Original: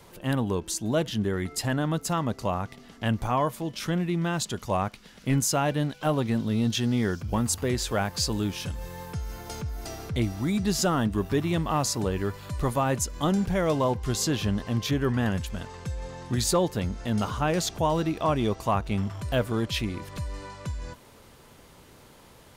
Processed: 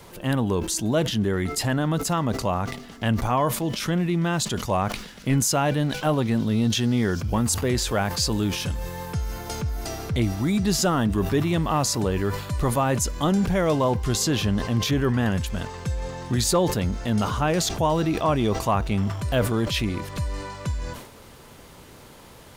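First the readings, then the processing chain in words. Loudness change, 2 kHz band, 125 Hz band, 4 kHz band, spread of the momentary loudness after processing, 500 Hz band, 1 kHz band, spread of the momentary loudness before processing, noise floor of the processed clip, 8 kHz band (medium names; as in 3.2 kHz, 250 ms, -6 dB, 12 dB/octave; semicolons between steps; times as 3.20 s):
+3.5 dB, +3.5 dB, +4.0 dB, +4.0 dB, 9 LU, +3.0 dB, +3.0 dB, 11 LU, -46 dBFS, +4.0 dB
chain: in parallel at -1 dB: peak limiter -24 dBFS, peak gain reduction 8.5 dB; on the sum: bit crusher 11-bit; decay stretcher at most 80 dB/s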